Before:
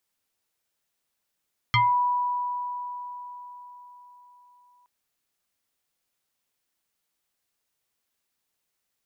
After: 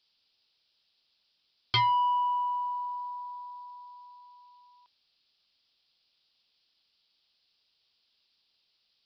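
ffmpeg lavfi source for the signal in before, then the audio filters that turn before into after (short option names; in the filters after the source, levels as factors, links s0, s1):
-f lavfi -i "aevalsrc='0.15*pow(10,-3*t/4.5)*sin(2*PI*982*t+2.7*pow(10,-3*t/0.25)*sin(2*PI*1.12*982*t))':d=3.12:s=44100"
-af "aexciter=amount=6.6:drive=4.6:freq=2800,aresample=11025,asoftclip=type=tanh:threshold=0.0891,aresample=44100"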